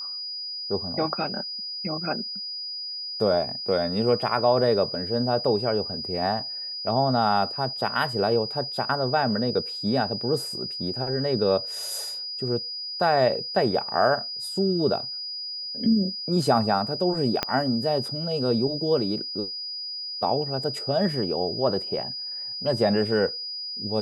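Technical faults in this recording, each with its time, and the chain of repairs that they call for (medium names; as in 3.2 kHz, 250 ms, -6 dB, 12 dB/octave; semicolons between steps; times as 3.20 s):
whine 4.9 kHz -31 dBFS
17.43 s: pop -8 dBFS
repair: de-click; band-stop 4.9 kHz, Q 30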